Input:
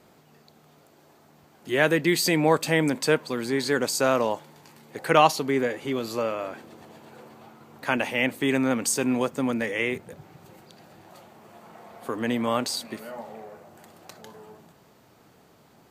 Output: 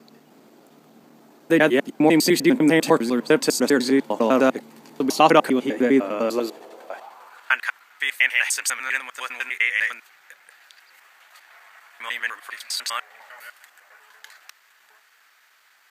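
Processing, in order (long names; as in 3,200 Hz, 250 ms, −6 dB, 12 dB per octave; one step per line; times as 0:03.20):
slices reordered back to front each 100 ms, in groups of 5
high-pass filter sweep 240 Hz → 1,700 Hz, 0:06.22–0:07.60
level +2.5 dB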